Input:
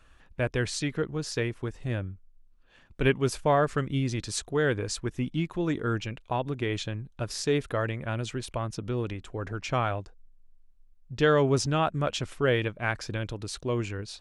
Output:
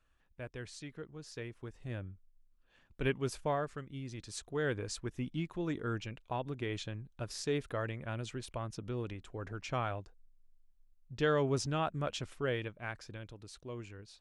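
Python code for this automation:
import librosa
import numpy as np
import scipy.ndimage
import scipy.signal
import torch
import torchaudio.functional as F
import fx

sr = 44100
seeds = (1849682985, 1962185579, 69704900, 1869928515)

y = fx.gain(x, sr, db=fx.line((1.14, -16.5), (2.09, -9.0), (3.45, -9.0), (3.86, -17.0), (4.68, -8.0), (12.17, -8.0), (13.32, -15.0)))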